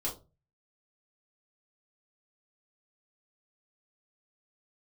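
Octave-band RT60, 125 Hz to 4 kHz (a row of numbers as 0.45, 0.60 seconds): 0.60, 0.35, 0.35, 0.25, 0.15, 0.20 seconds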